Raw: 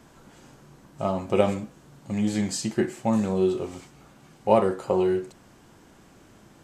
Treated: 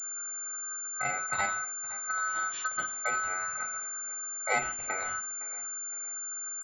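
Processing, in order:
elliptic band-stop filter 140–710 Hz, stop band 40 dB
low-pass that shuts in the quiet parts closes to 970 Hz, open at −20 dBFS
flat-topped bell 1,200 Hz −11.5 dB
in parallel at −1 dB: downward compressor, threshold −41 dBFS, peak gain reduction 13.5 dB
on the sum: ring modulation 1,400 Hz
repeating echo 513 ms, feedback 39%, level −18 dB
switching amplifier with a slow clock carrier 7,200 Hz
level +4.5 dB

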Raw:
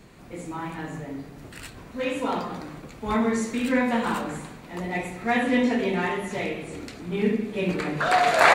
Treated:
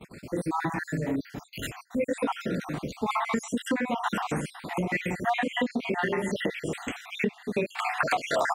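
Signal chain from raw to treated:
time-frequency cells dropped at random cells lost 58%
noise gate −53 dBFS, range −21 dB
low-shelf EQ 230 Hz +5 dB
downward compressor 16 to 1, threshold −31 dBFS, peak gain reduction 17.5 dB
high-pass filter 170 Hz 6 dB per octave
level +8.5 dB

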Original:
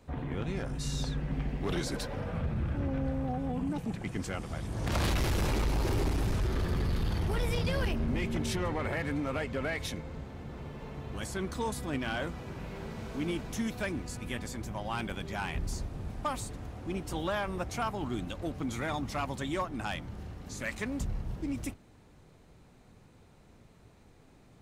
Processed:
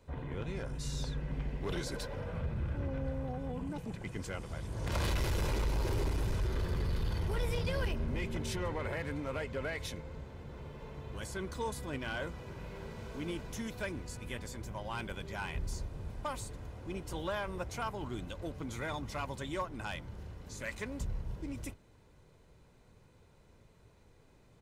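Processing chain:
comb filter 2 ms, depth 33%
level −4.5 dB

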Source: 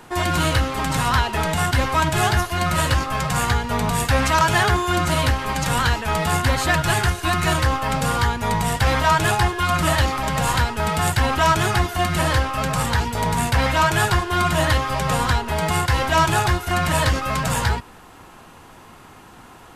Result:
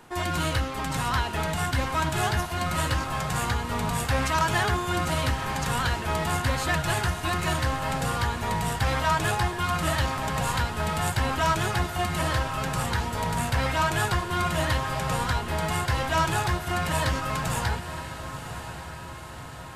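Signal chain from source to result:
feedback delay with all-pass diffusion 996 ms, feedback 62%, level −11 dB
level −7 dB

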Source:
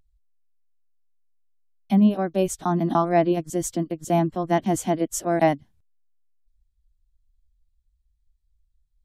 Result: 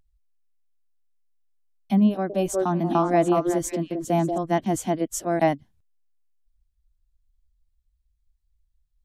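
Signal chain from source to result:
0:02.11–0:04.38: echo through a band-pass that steps 184 ms, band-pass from 450 Hz, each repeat 1.4 octaves, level 0 dB
level −1.5 dB

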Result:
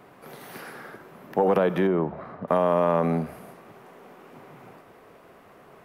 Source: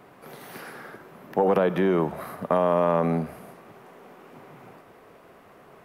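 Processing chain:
0:01.87–0:02.48: head-to-tape spacing loss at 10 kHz 34 dB

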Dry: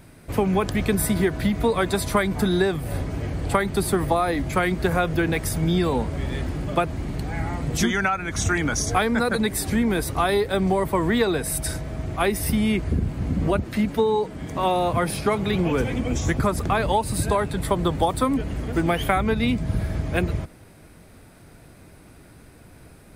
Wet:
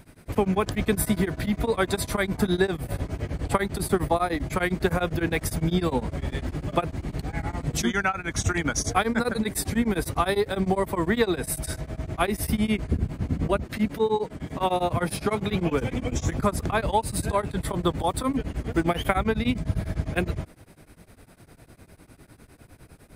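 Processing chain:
tremolo along a rectified sine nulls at 9.9 Hz

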